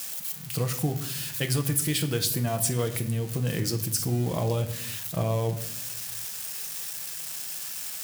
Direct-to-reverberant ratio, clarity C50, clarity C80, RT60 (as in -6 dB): 6.5 dB, 12.5 dB, 15.5 dB, 0.75 s